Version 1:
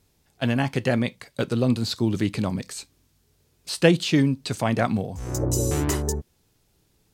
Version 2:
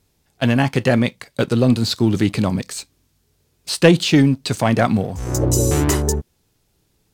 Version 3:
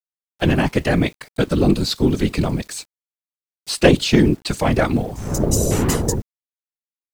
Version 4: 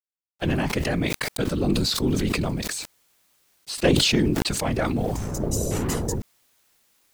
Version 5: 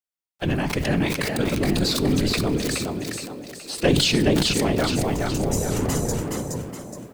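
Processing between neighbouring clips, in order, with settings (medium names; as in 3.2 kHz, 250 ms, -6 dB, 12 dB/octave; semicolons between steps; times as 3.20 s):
waveshaping leveller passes 1; trim +3 dB
whisper effect; word length cut 8-bit, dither none; trim -1 dB
decay stretcher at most 21 dB/s; trim -8 dB
on a send: frequency-shifting echo 420 ms, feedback 41%, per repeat +56 Hz, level -4 dB; on the sum: simulated room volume 1300 m³, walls mixed, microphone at 0.33 m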